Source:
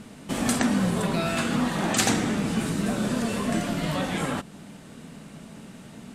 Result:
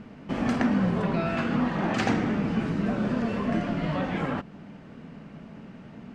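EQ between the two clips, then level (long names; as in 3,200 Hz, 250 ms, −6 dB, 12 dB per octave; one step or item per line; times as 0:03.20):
high-frequency loss of the air 240 metres
parametric band 3,700 Hz −6.5 dB 0.38 octaves
0.0 dB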